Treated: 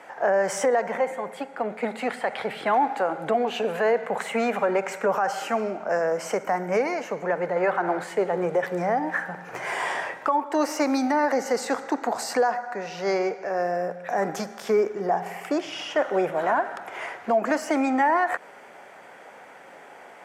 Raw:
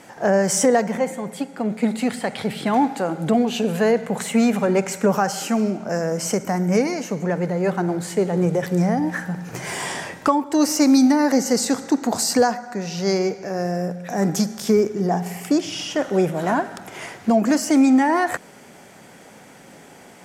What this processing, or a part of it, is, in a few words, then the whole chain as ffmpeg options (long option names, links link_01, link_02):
DJ mixer with the lows and highs turned down: -filter_complex "[0:a]asettb=1/sr,asplit=3[link_01][link_02][link_03];[link_01]atrim=end=7.564[link_04];[link_02]atrim=start=7.56:end=8.04,asetpts=PTS-STARTPTS,afade=type=in:duration=0.004:curve=qsin,afade=type=out:start_time=0.476:duration=0.004:curve=qsin,equalizer=frequency=1500:width=0.43:gain=6.5[link_05];[link_03]atrim=start=8.036[link_06];[link_04][link_05]acrossfade=duration=0.004:curve1=hsin:curve2=qsin[link_07];[link_07][link_06]acrossfade=duration=0.004:curve1=qsin:curve2=hsin,acrossover=split=450 2500:gain=0.1 1 0.158[link_08][link_09][link_10];[link_08][link_09][link_10]amix=inputs=3:normalize=0,alimiter=limit=-17dB:level=0:latency=1:release=81,volume=3.5dB"